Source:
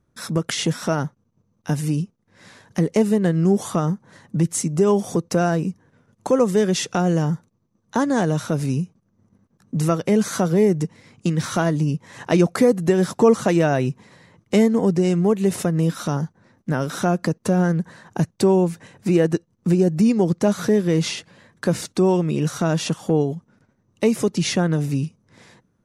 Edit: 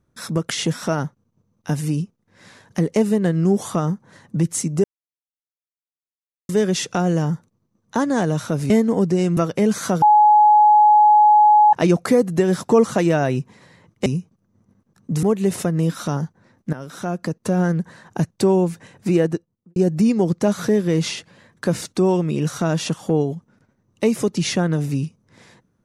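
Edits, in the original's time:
4.84–6.49 s: mute
8.70–9.87 s: swap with 14.56–15.23 s
10.52–12.23 s: bleep 843 Hz -8.5 dBFS
16.73–17.65 s: fade in, from -13 dB
19.14–19.76 s: studio fade out

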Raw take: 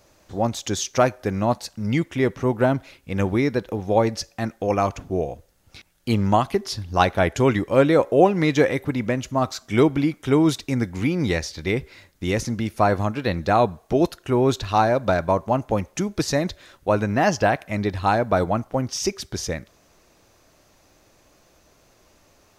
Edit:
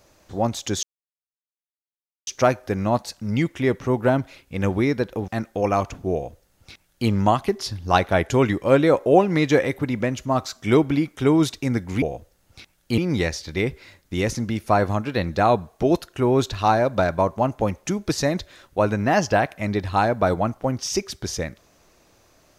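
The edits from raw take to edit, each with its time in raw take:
0.83 s: insert silence 1.44 s
3.84–4.34 s: delete
5.19–6.15 s: copy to 11.08 s

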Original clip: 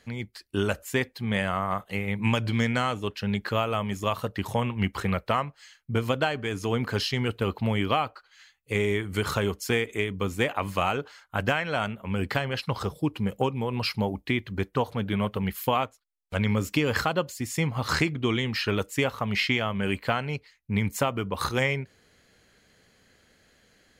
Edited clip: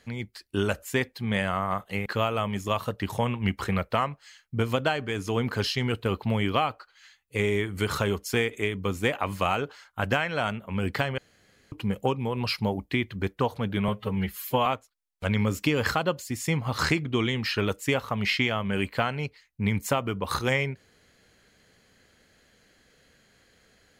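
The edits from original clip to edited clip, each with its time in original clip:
2.06–3.42 s: delete
12.54–13.08 s: room tone
15.24–15.76 s: stretch 1.5×

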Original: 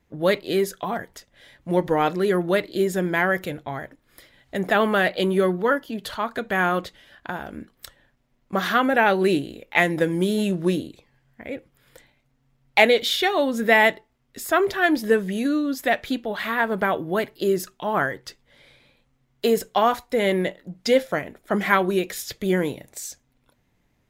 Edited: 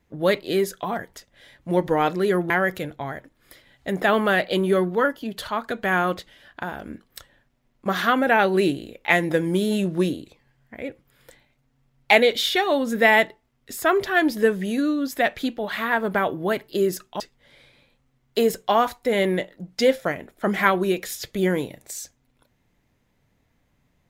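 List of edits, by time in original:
2.50–3.17 s: delete
17.87–18.27 s: delete

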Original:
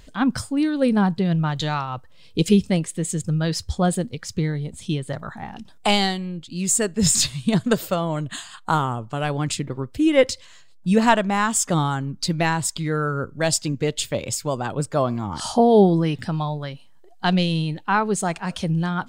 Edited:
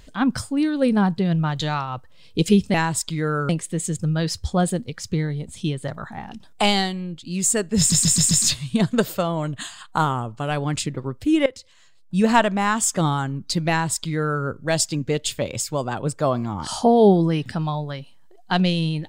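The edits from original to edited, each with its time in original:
7.04 s: stutter 0.13 s, 5 plays
10.19–11.04 s: fade in, from -20 dB
12.42–13.17 s: copy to 2.74 s

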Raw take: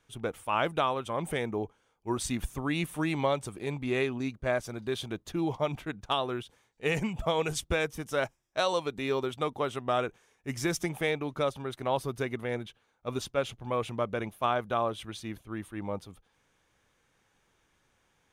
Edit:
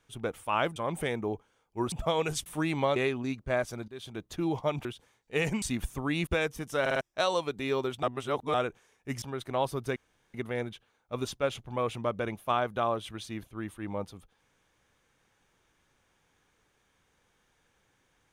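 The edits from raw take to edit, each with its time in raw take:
0.76–1.06 s: delete
2.22–2.87 s: swap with 7.12–7.66 s
3.37–3.92 s: delete
4.84–5.28 s: fade in, from -19 dB
5.81–6.35 s: delete
8.20 s: stutter in place 0.05 s, 4 plays
9.42–9.93 s: reverse
10.61–11.54 s: delete
12.28 s: insert room tone 0.38 s

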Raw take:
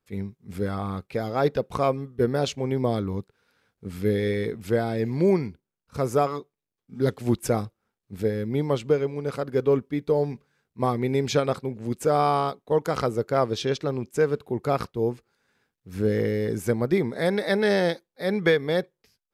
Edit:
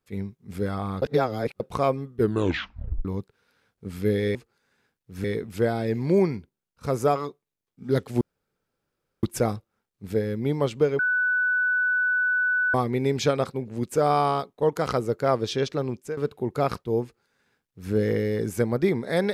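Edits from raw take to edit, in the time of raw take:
1.02–1.60 s: reverse
2.18 s: tape stop 0.87 s
7.32 s: insert room tone 1.02 s
9.08–10.83 s: bleep 1.49 kHz -20 dBFS
14.01–14.26 s: fade out, to -16.5 dB
15.12–16.01 s: copy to 4.35 s

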